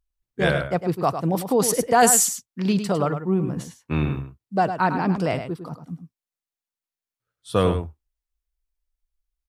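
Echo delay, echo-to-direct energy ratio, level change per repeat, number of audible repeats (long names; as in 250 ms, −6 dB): 104 ms, −9.0 dB, repeats not evenly spaced, 1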